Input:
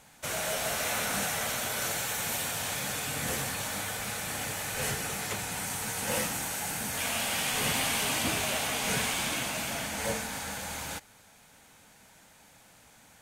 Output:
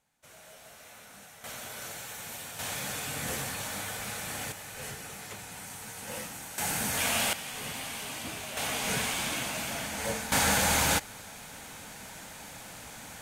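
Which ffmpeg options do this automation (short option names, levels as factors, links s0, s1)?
-af "asetnsamples=n=441:p=0,asendcmd='1.44 volume volume -9dB;2.59 volume volume -2dB;4.52 volume volume -8.5dB;6.58 volume volume 3dB;7.33 volume volume -9dB;8.57 volume volume -1dB;10.32 volume volume 12dB',volume=0.1"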